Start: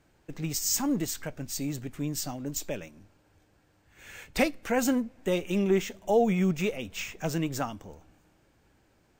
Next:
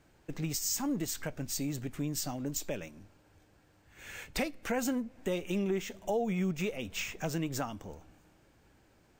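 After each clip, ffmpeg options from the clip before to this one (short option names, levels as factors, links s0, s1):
-filter_complex "[0:a]asplit=2[s0][s1];[s1]alimiter=limit=0.1:level=0:latency=1:release=312,volume=1.19[s2];[s0][s2]amix=inputs=2:normalize=0,acompressor=threshold=0.0447:ratio=2,volume=0.501"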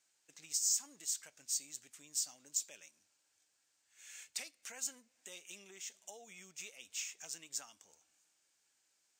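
-af "bandpass=f=7300:t=q:w=1.5:csg=0,volume=1.33"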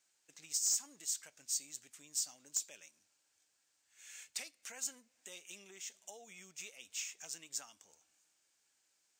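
-af "aeval=exprs='0.0631*(abs(mod(val(0)/0.0631+3,4)-2)-1)':c=same"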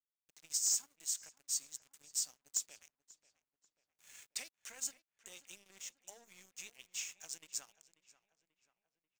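-filter_complex "[0:a]aeval=exprs='sgn(val(0))*max(abs(val(0))-0.00168,0)':c=same,asplit=2[s0][s1];[s1]adelay=538,lowpass=f=2600:p=1,volume=0.15,asplit=2[s2][s3];[s3]adelay=538,lowpass=f=2600:p=1,volume=0.52,asplit=2[s4][s5];[s5]adelay=538,lowpass=f=2600:p=1,volume=0.52,asplit=2[s6][s7];[s7]adelay=538,lowpass=f=2600:p=1,volume=0.52,asplit=2[s8][s9];[s9]adelay=538,lowpass=f=2600:p=1,volume=0.52[s10];[s0][s2][s4][s6][s8][s10]amix=inputs=6:normalize=0,volume=1.12"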